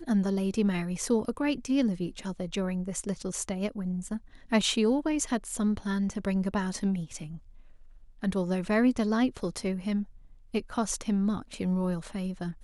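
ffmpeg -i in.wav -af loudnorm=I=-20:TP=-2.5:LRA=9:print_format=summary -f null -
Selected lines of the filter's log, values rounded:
Input Integrated:    -30.1 LUFS
Input True Peak:     -11.8 dBTP
Input LRA:             2.5 LU
Input Threshold:     -40.4 LUFS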